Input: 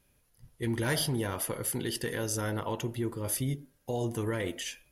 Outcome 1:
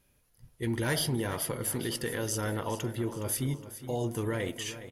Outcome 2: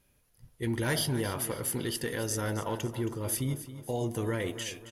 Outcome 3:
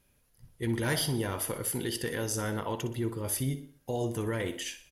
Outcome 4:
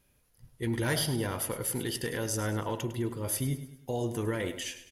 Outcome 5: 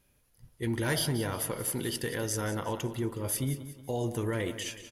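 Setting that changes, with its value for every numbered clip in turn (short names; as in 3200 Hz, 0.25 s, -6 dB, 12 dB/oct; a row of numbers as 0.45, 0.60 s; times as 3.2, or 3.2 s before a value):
feedback echo, time: 415, 271, 61, 103, 182 ms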